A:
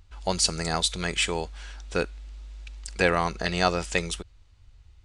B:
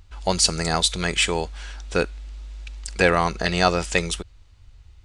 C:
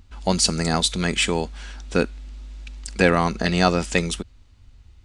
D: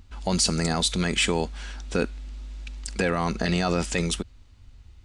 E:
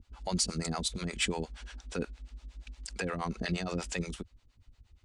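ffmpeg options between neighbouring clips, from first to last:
-af "acontrast=21"
-af "equalizer=f=230:t=o:w=0.81:g=10.5,volume=-1dB"
-af "alimiter=limit=-12.5dB:level=0:latency=1:release=20"
-filter_complex "[0:a]acrossover=split=460[a][b];[a]aeval=exprs='val(0)*(1-1/2+1/2*cos(2*PI*8.5*n/s))':c=same[c];[b]aeval=exprs='val(0)*(1-1/2-1/2*cos(2*PI*8.5*n/s))':c=same[d];[c][d]amix=inputs=2:normalize=0,volume=-5dB"

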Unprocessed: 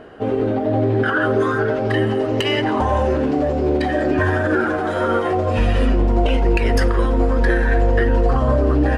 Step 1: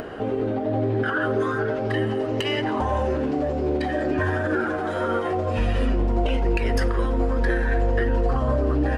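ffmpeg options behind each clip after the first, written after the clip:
-af "acompressor=mode=upward:threshold=-18dB:ratio=2.5,volume=-5.5dB"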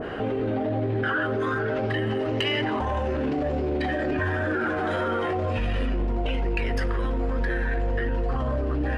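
-af "bass=f=250:g=2,treble=f=4k:g=-12,alimiter=limit=-21.5dB:level=0:latency=1:release=19,adynamicequalizer=threshold=0.00447:dfrequency=1700:dqfactor=0.7:tfrequency=1700:tqfactor=0.7:attack=5:release=100:ratio=0.375:range=4:mode=boostabove:tftype=highshelf,volume=2dB"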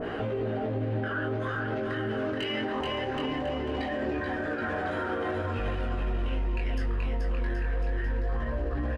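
-filter_complex "[0:a]flanger=delay=17:depth=5.5:speed=0.23,asplit=2[a][b];[b]aecho=0:1:430|774|1049|1269|1445:0.631|0.398|0.251|0.158|0.1[c];[a][c]amix=inputs=2:normalize=0,alimiter=limit=-24dB:level=0:latency=1:release=163,volume=1.5dB"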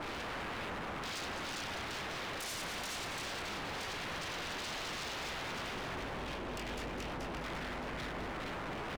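-filter_complex "[0:a]aeval=exprs='0.015*(abs(mod(val(0)/0.015+3,4)-2)-1)':c=same,asplit=2[a][b];[b]aecho=0:1:205:0.398[c];[a][c]amix=inputs=2:normalize=0"

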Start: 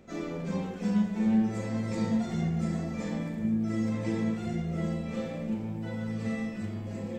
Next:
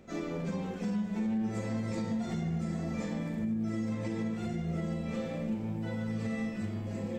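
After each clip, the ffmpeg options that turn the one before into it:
-af "alimiter=level_in=1.5dB:limit=-24dB:level=0:latency=1:release=152,volume=-1.5dB"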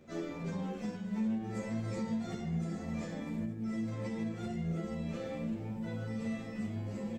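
-filter_complex "[0:a]asplit=2[a][b];[b]adelay=10.6,afreqshift=2.4[c];[a][c]amix=inputs=2:normalize=1"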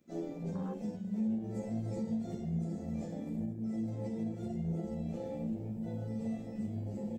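-af "crystalizer=i=3:c=0,afwtdn=0.0112"

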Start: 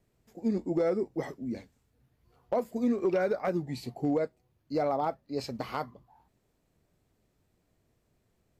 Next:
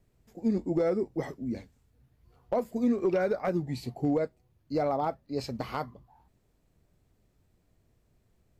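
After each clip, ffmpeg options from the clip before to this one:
-af "lowshelf=f=110:g=9"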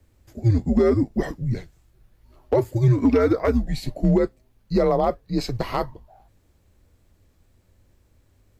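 -af "afreqshift=-110,volume=9dB"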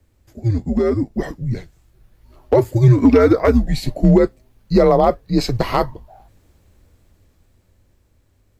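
-af "dynaudnorm=f=220:g=17:m=11.5dB"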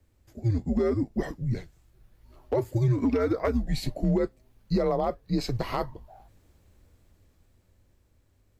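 -af "alimiter=limit=-10.5dB:level=0:latency=1:release=275,volume=-6dB"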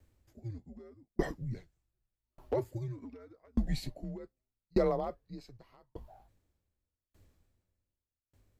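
-af "aeval=exprs='val(0)*pow(10,-39*if(lt(mod(0.84*n/s,1),2*abs(0.84)/1000),1-mod(0.84*n/s,1)/(2*abs(0.84)/1000),(mod(0.84*n/s,1)-2*abs(0.84)/1000)/(1-2*abs(0.84)/1000))/20)':c=same"

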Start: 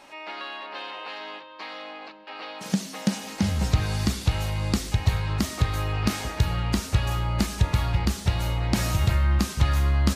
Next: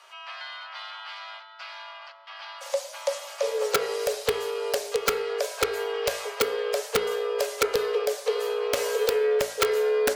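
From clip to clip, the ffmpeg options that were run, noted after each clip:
-af "afreqshift=360,aeval=exprs='(mod(3.76*val(0)+1,2)-1)/3.76':c=same,bandreject=f=57.31:t=h:w=4,bandreject=f=114.62:t=h:w=4,bandreject=f=171.93:t=h:w=4,bandreject=f=229.24:t=h:w=4,bandreject=f=286.55:t=h:w=4,bandreject=f=343.86:t=h:w=4,bandreject=f=401.17:t=h:w=4,bandreject=f=458.48:t=h:w=4,bandreject=f=515.79:t=h:w=4,bandreject=f=573.1:t=h:w=4,bandreject=f=630.41:t=h:w=4,bandreject=f=687.72:t=h:w=4,bandreject=f=745.03:t=h:w=4,bandreject=f=802.34:t=h:w=4,bandreject=f=859.65:t=h:w=4,bandreject=f=916.96:t=h:w=4,bandreject=f=974.27:t=h:w=4,bandreject=f=1.03158k:t=h:w=4,bandreject=f=1.08889k:t=h:w=4,bandreject=f=1.1462k:t=h:w=4,bandreject=f=1.20351k:t=h:w=4,bandreject=f=1.26082k:t=h:w=4,bandreject=f=1.31813k:t=h:w=4,bandreject=f=1.37544k:t=h:w=4,bandreject=f=1.43275k:t=h:w=4,bandreject=f=1.49006k:t=h:w=4,bandreject=f=1.54737k:t=h:w=4,bandreject=f=1.60468k:t=h:w=4,bandreject=f=1.66199k:t=h:w=4,bandreject=f=1.7193k:t=h:w=4,bandreject=f=1.77661k:t=h:w=4,bandreject=f=1.83392k:t=h:w=4,bandreject=f=1.89123k:t=h:w=4,bandreject=f=1.94854k:t=h:w=4,bandreject=f=2.00585k:t=h:w=4,bandreject=f=2.06316k:t=h:w=4,bandreject=f=2.12047k:t=h:w=4,bandreject=f=2.17778k:t=h:w=4,bandreject=f=2.23509k:t=h:w=4,volume=-2.5dB"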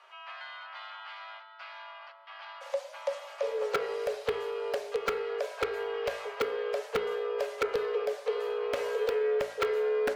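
-filter_complex "[0:a]bass=f=250:g=-2,treble=f=4k:g=-15,asplit=2[a][b];[b]asoftclip=type=tanh:threshold=-32.5dB,volume=-10dB[c];[a][c]amix=inputs=2:normalize=0,volume=-5.5dB"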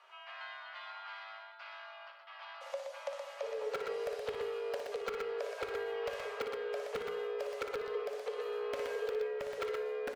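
-filter_complex "[0:a]acompressor=threshold=-31dB:ratio=6,asplit=2[a][b];[b]aecho=0:1:58.31|122.4:0.398|0.562[c];[a][c]amix=inputs=2:normalize=0,volume=-4.5dB"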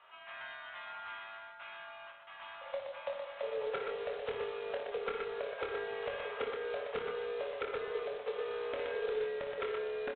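-filter_complex "[0:a]aresample=8000,acrusher=bits=4:mode=log:mix=0:aa=0.000001,aresample=44100,asplit=2[a][b];[b]adelay=25,volume=-6dB[c];[a][c]amix=inputs=2:normalize=0"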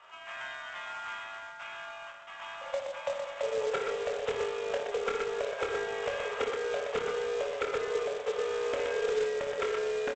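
-af "aecho=1:1:708|1416|2124|2832|3540:0.119|0.0701|0.0414|0.0244|0.0144,aresample=16000,acrusher=bits=4:mode=log:mix=0:aa=0.000001,aresample=44100,volume=5.5dB"

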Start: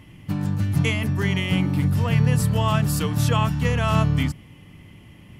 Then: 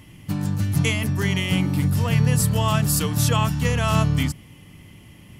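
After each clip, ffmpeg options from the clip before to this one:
-af "bass=f=250:g=0,treble=f=4k:g=8"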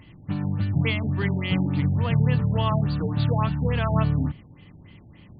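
-af "afftfilt=real='re*lt(b*sr/1024,860*pow(4900/860,0.5+0.5*sin(2*PI*3.5*pts/sr)))':imag='im*lt(b*sr/1024,860*pow(4900/860,0.5+0.5*sin(2*PI*3.5*pts/sr)))':win_size=1024:overlap=0.75,volume=-2dB"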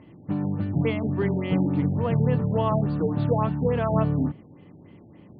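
-af "bandpass=f=420:t=q:w=0.92:csg=0,volume=6.5dB"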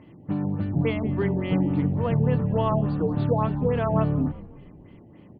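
-filter_complex "[0:a]asplit=5[a][b][c][d][e];[b]adelay=182,afreqshift=-64,volume=-19dB[f];[c]adelay=364,afreqshift=-128,volume=-25dB[g];[d]adelay=546,afreqshift=-192,volume=-31dB[h];[e]adelay=728,afreqshift=-256,volume=-37.1dB[i];[a][f][g][h][i]amix=inputs=5:normalize=0"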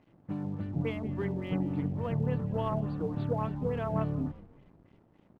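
-af "aeval=exprs='sgn(val(0))*max(abs(val(0))-0.00251,0)':c=same,aeval=exprs='0.282*(cos(1*acos(clip(val(0)/0.282,-1,1)))-cos(1*PI/2))+0.0158*(cos(3*acos(clip(val(0)/0.282,-1,1)))-cos(3*PI/2))':c=same,volume=-7dB"

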